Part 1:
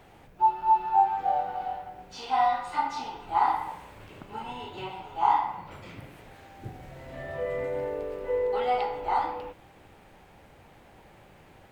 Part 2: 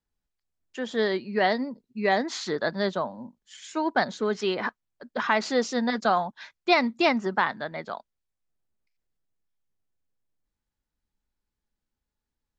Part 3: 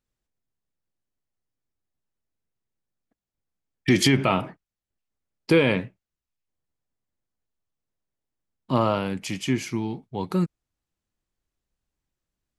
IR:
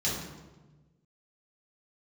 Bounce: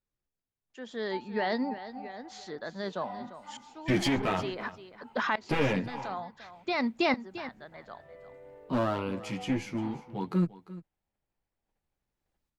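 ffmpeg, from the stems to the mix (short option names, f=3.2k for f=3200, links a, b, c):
-filter_complex "[0:a]agate=range=-19dB:threshold=-50dB:ratio=16:detection=peak,adelay=700,volume=-19.5dB[a];[1:a]alimiter=limit=-16.5dB:level=0:latency=1:release=14,aeval=exprs='val(0)*pow(10,-22*if(lt(mod(-0.56*n/s,1),2*abs(-0.56)/1000),1-mod(-0.56*n/s,1)/(2*abs(-0.56)/1000),(mod(-0.56*n/s,1)-2*abs(-0.56)/1000)/(1-2*abs(-0.56)/1000))/20)':c=same,volume=1dB,asplit=2[b][c];[c]volume=-13.5dB[d];[2:a]highshelf=f=4.7k:g=-11,aeval=exprs='clip(val(0),-1,0.0944)':c=same,asplit=2[e][f];[f]adelay=10.6,afreqshift=-1.1[g];[e][g]amix=inputs=2:normalize=1,volume=-2dB,asplit=2[h][i];[i]volume=-17dB[j];[d][j]amix=inputs=2:normalize=0,aecho=0:1:347:1[k];[a][b][h][k]amix=inputs=4:normalize=0"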